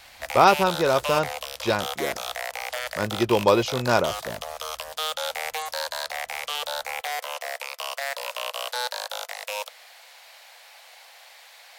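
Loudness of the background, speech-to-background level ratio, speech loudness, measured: −30.5 LKFS, 7.5 dB, −23.0 LKFS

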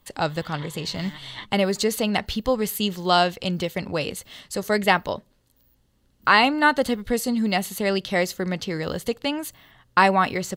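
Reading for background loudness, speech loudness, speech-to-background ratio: −42.0 LKFS, −23.5 LKFS, 18.5 dB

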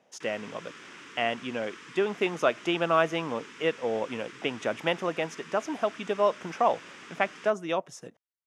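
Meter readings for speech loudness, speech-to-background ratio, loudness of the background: −29.5 LKFS, 16.5 dB, −46.0 LKFS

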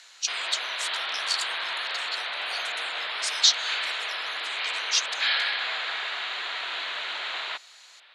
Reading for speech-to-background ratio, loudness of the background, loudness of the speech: 0.0 dB, −28.5 LKFS, −28.5 LKFS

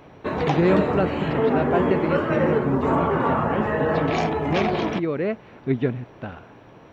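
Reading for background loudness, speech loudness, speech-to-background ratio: −23.0 LKFS, −27.0 LKFS, −4.0 dB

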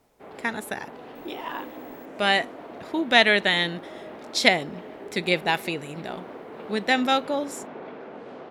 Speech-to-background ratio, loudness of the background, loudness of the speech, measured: 17.5 dB, −41.0 LKFS, −23.5 LKFS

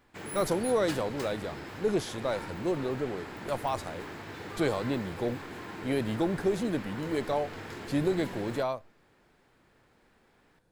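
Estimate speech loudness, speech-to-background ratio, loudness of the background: −32.0 LKFS, 9.0 dB, −41.0 LKFS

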